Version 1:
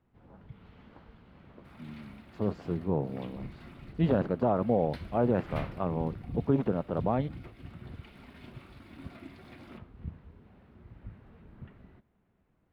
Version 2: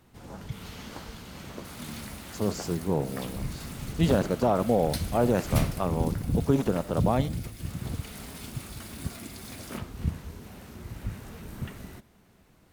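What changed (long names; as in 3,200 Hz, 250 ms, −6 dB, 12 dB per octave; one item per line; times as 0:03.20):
speech: send +11.5 dB
first sound +11.0 dB
master: remove high-frequency loss of the air 480 metres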